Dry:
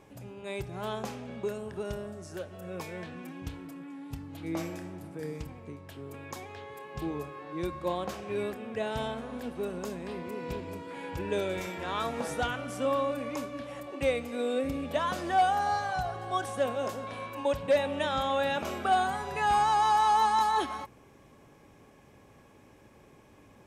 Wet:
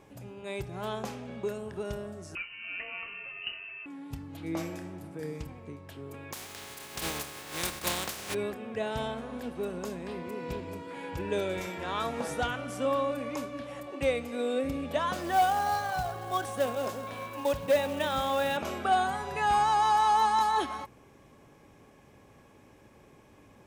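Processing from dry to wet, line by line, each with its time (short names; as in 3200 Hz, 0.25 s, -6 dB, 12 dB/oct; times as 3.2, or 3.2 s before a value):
2.35–3.86 inverted band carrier 2900 Hz
6.32–8.33 spectral contrast lowered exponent 0.29
15.13–18.57 short-mantissa float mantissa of 2-bit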